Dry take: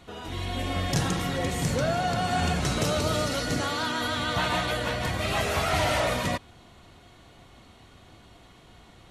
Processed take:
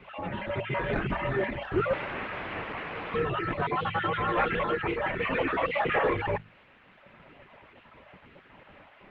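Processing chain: random holes in the spectrogram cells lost 27%; reverb removal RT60 1.5 s; hum notches 50/100/150/200/250/300/350 Hz; in parallel at -10 dB: integer overflow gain 27 dB; on the sum: added noise blue -44 dBFS; 1.93–3.14 s: integer overflow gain 28.5 dB; mistuned SSB -140 Hz 220–2700 Hz; trim +4.5 dB; Opus 16 kbps 48 kHz

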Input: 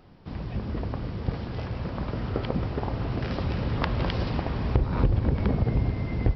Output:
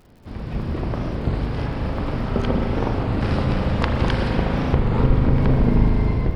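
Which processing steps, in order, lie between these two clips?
hum notches 50/100/150 Hz; on a send: tape echo 787 ms, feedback 36%, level -16 dB, low-pass 3.3 kHz; on the sum: harmony voices -12 st -3 dB, +12 st -16 dB; spring tank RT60 3.8 s, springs 38 ms, chirp 60 ms, DRR 1.5 dB; level rider gain up to 4.5 dB; crackle 86 per s -44 dBFS; warped record 33 1/3 rpm, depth 160 cents

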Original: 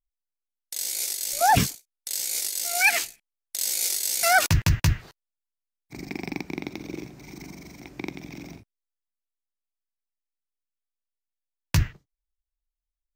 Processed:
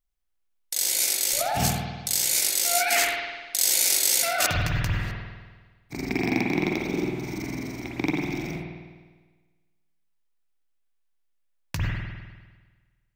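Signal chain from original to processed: compressor with a negative ratio -26 dBFS, ratio -1; spring tank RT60 1.4 s, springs 50 ms, chirp 65 ms, DRR -2 dB; trim +2 dB

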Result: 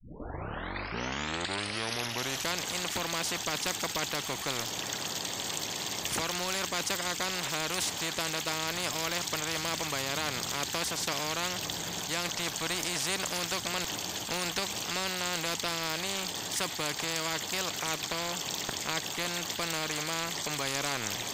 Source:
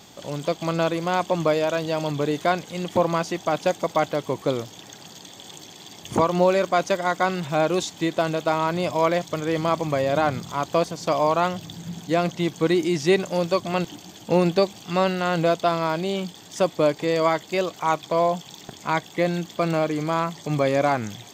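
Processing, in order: tape start-up on the opening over 2.58 s; spectrum-flattening compressor 4:1; trim -7.5 dB

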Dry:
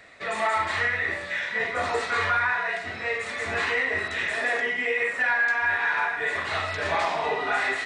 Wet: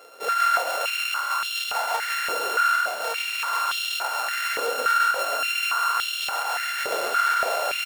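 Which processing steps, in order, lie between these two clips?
sorted samples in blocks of 32 samples; compression 4:1, threshold -28 dBFS, peak gain reduction 7 dB; on a send: frequency-shifting echo 138 ms, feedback 53%, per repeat +40 Hz, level -4 dB; on the sum: step-sequenced high-pass 3.5 Hz 460–3200 Hz

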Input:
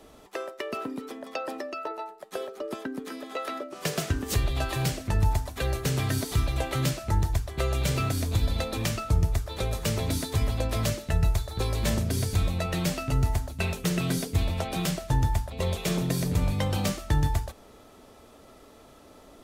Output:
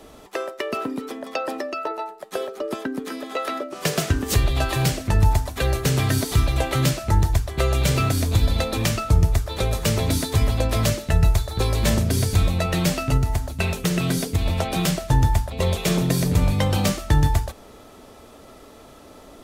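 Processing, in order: 13.17–14.46 s: compression 4:1, threshold -24 dBFS, peak gain reduction 5.5 dB; trim +6.5 dB

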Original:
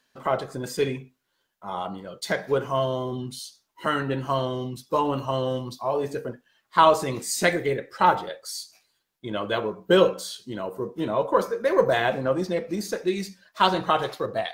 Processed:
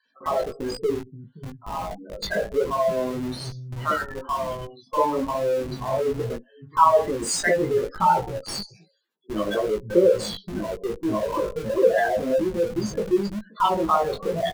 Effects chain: 3.91–4.82 s: three-band isolator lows -18 dB, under 590 Hz, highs -14 dB, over 3.7 kHz; spectral gate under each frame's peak -10 dB strong; 10.88–11.72 s: compression 6:1, threshold -24 dBFS, peak gain reduction 9 dB; three bands offset in time highs, mids, lows 50/580 ms, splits 180/790 Hz; in parallel at -10 dB: Schmitt trigger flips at -34.5 dBFS; on the sum: chorus 1.1 Hz, delay 17.5 ms, depth 2.1 ms; trim +6 dB

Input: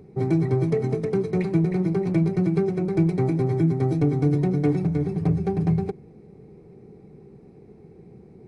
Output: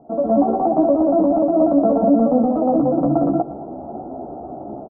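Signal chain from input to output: inverse Chebyshev low-pass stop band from 1.1 kHz, stop band 40 dB; bass shelf 410 Hz -7.5 dB; level rider gain up to 16.5 dB; peak limiter -10 dBFS, peak gain reduction 8 dB; compression 1.5:1, threshold -24 dBFS, peak gain reduction 4 dB; chorus voices 2, 0.73 Hz, delay 24 ms, depth 2.8 ms; feedback delay 198 ms, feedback 53%, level -16 dB; speed mistake 45 rpm record played at 78 rpm; trim +7.5 dB

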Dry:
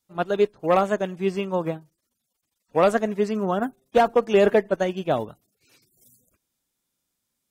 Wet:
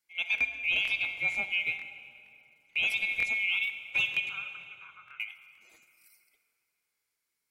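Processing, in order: split-band scrambler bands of 2 kHz; 4.29–5.20 s: Butterworth band-pass 1.3 kHz, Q 3.6; plate-style reverb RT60 2.9 s, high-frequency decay 0.7×, DRR 10 dB; peak limiter -14 dBFS, peak gain reduction 8 dB; crackling interface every 0.47 s, samples 1024, repeat, from 0.36 s; trim -5 dB

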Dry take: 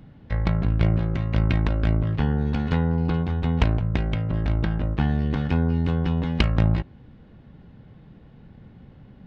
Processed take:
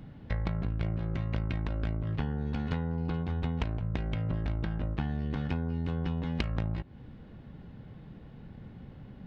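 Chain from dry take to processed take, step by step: compression 6:1, threshold -28 dBFS, peak gain reduction 14 dB

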